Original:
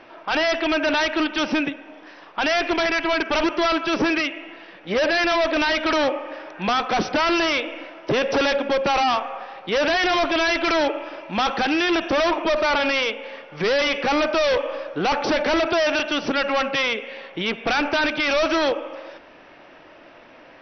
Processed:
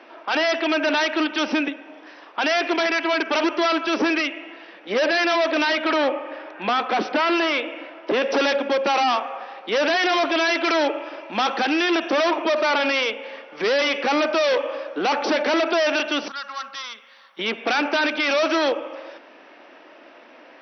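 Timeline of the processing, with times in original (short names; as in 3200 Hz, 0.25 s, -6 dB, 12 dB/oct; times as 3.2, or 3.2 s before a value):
5.75–8.22 LPF 4000 Hz
16.28–17.39 EQ curve 100 Hz 0 dB, 190 Hz -13 dB, 270 Hz -25 dB, 420 Hz -28 dB, 740 Hz -17 dB, 1200 Hz -3 dB, 2500 Hz -18 dB, 3700 Hz -5 dB, 5700 Hz -3 dB, 10000 Hz +11 dB
whole clip: steep high-pass 220 Hz 36 dB/oct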